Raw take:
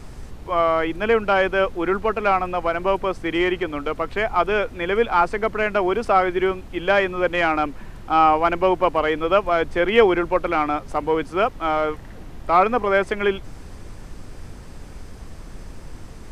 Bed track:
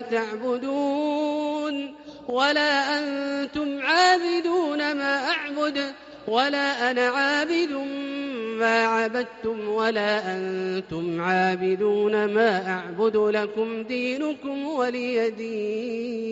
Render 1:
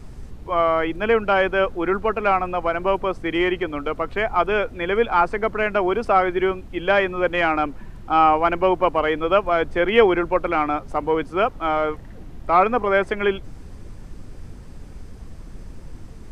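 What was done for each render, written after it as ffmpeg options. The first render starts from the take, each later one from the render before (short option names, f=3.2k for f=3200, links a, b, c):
-af "afftdn=nr=6:nf=-39"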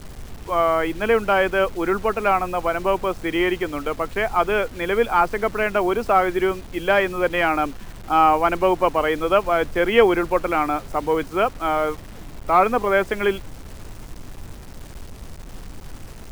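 -af "acrusher=bits=6:mix=0:aa=0.000001"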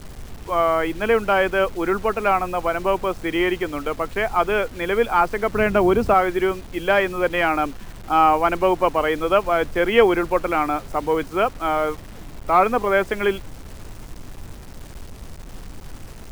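-filter_complex "[0:a]asettb=1/sr,asplit=3[a][b][c];[a]atrim=end=5.544[d];[b]atrim=start=5.54:end=6.14,asetpts=PTS-STARTPTS,afade=t=in:d=0.004:c=qsin,afade=t=out:st=0.596:d=0.004:c=qsin,equalizer=f=100:w=0.37:g=11.5[e];[c]atrim=start=6.136[f];[d][e]acrossfade=d=0.004:c1=hsin:c2=qsin[g];[g][f]acrossfade=d=0.004:c1=qsin:c2=hsin"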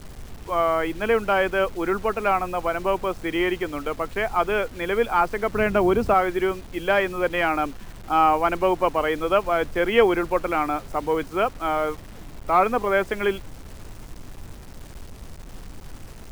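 -af "volume=-2.5dB"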